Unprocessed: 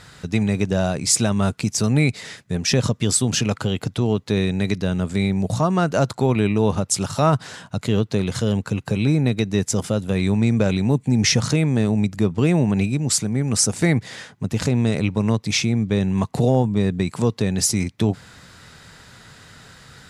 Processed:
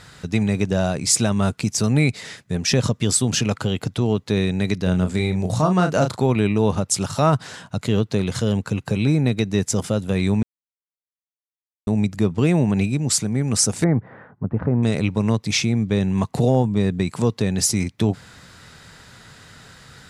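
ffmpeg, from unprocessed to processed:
-filter_complex "[0:a]asettb=1/sr,asplit=3[a][b][c];[a]atrim=end=4.834[d];[b]atrim=start=4.83:end=6.21,asetpts=PTS-STARTPTS,afade=t=in:d=0.004:c=qsin,afade=t=out:st=1.376:d=0.004:c=qsin,asplit=2[e][f];[f]adelay=33,volume=-6.5dB[g];[e][g]amix=inputs=2:normalize=0,atrim=end_sample=60858[h];[c]atrim=start=6.206[i];[d][h]acrossfade=d=0.004:c1=hsin:c2=qsin[j];[j][i]acrossfade=d=0.004:c1=qsin:c2=hsin,asettb=1/sr,asplit=3[k][l][m];[k]atrim=end=13.844[n];[l]atrim=start=13.84:end=14.83,asetpts=PTS-STARTPTS,afade=t=in:d=0.004:c=qsin,afade=t=out:st=0.986:d=0.004:c=qsin,lowpass=f=1.4k:w=0.5412,lowpass=f=1.4k:w=1.3066[o];[m]atrim=start=14.826[p];[n][o]acrossfade=d=0.004:c1=hsin:c2=qsin[q];[q][p]acrossfade=d=0.004:c1=qsin:c2=hsin,asplit=3[r][s][t];[r]atrim=end=10.43,asetpts=PTS-STARTPTS,afade=t=out:st=10.426:d=0.004:c=hsin[u];[s]atrim=start=10.43:end=11.87,asetpts=PTS-STARTPTS,volume=0[v];[t]atrim=start=11.87,asetpts=PTS-STARTPTS,afade=t=in:d=0.004:c=hsin[w];[u][v][w]concat=n=3:v=0:a=1"

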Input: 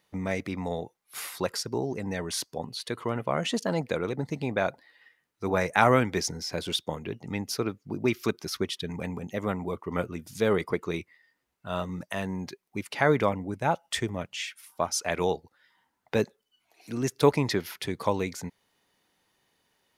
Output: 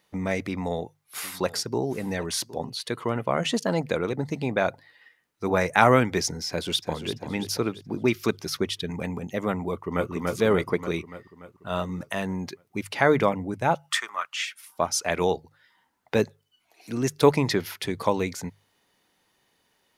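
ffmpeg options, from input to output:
-filter_complex "[0:a]asettb=1/sr,asplit=3[a][b][c];[a]atrim=end=0.464[d];[b]atrim=start=0.46:end=2.7,asetpts=PTS-STARTPTS,afade=t=in:d=0.004:c=qsin,afade=t=out:st=2.236:d=0.004:c=qsin,aecho=1:1:765:0.126,atrim=end_sample=98784[e];[c]atrim=start=2.696[f];[d][e]acrossfade=d=0.004:c1=hsin:c2=qsin[g];[g][f]acrossfade=d=0.004:c1=qsin:c2=hsin,asplit=2[h][i];[i]afade=t=in:st=6.48:d=0.01,afade=t=out:st=7.13:d=0.01,aecho=0:1:340|680|1020|1360|1700:0.354813|0.159666|0.0718497|0.0323324|0.0145496[j];[h][j]amix=inputs=2:normalize=0,asplit=2[k][l];[l]afade=t=in:st=9.71:d=0.01,afade=t=out:st=10.11:d=0.01,aecho=0:1:290|580|870|1160|1450|1740|2030|2320|2610:0.794328|0.476597|0.285958|0.171575|0.102945|0.061767|0.0370602|0.0222361|0.0133417[m];[k][m]amix=inputs=2:normalize=0,asettb=1/sr,asplit=3[n][o][p];[n]atrim=end=13.894[q];[o]atrim=start=13.89:end=14.45,asetpts=PTS-STARTPTS,afade=t=in:d=0.004:c=qsin,afade=t=out:st=0.556:d=0.004:c=qsin,highpass=f=1.2k:t=q:w=5.3[r];[p]atrim=start=14.446[s];[q][r]acrossfade=d=0.004:c1=hsin:c2=qsin[t];[t][s]acrossfade=d=0.004:c1=qsin:c2=hsin,bandreject=f=50:t=h:w=6,bandreject=f=100:t=h:w=6,bandreject=f=150:t=h:w=6,volume=3dB"

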